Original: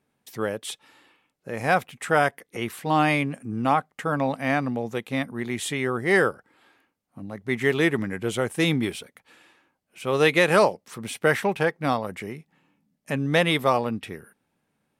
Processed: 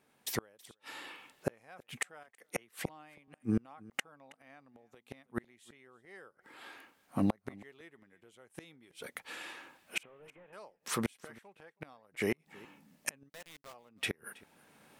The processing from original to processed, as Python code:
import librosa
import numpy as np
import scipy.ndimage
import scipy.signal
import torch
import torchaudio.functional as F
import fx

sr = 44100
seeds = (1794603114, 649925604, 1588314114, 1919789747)

y = fx.delta_mod(x, sr, bps=16000, step_db=-33.0, at=(10.03, 10.53))
y = fx.recorder_agc(y, sr, target_db=-15.5, rise_db_per_s=11.0, max_gain_db=30)
y = fx.low_shelf(y, sr, hz=240.0, db=-11.0)
y = fx.gate_flip(y, sr, shuts_db=-23.0, range_db=-36)
y = fx.quant_companded(y, sr, bits=4, at=(13.28, 13.72), fade=0.02)
y = y + 10.0 ** (-23.0 / 20.0) * np.pad(y, (int(323 * sr / 1000.0), 0))[:len(y)]
y = fx.band_widen(y, sr, depth_pct=40, at=(2.23, 3.28))
y = F.gain(torch.from_numpy(y), 4.5).numpy()